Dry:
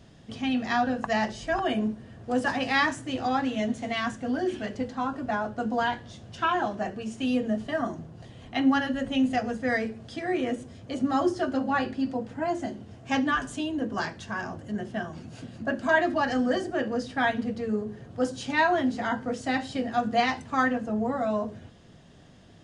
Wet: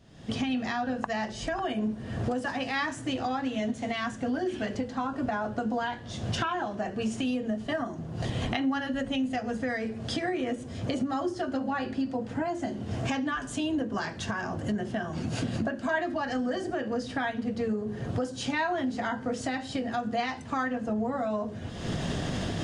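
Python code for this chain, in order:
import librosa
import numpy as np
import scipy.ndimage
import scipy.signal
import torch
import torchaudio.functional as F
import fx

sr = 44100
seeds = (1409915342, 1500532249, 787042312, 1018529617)

y = fx.recorder_agc(x, sr, target_db=-16.0, rise_db_per_s=53.0, max_gain_db=30)
y = F.gain(torch.from_numpy(y), -6.5).numpy()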